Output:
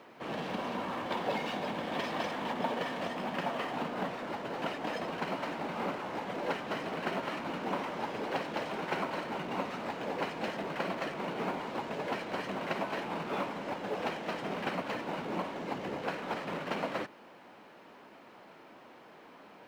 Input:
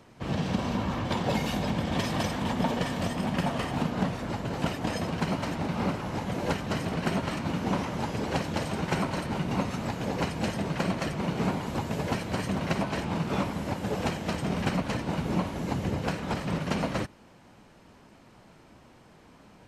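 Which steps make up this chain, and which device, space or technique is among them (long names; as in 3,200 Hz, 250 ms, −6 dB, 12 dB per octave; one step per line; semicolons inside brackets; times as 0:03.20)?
phone line with mismatched companding (band-pass filter 340–3,300 Hz; mu-law and A-law mismatch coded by mu)
level −3.5 dB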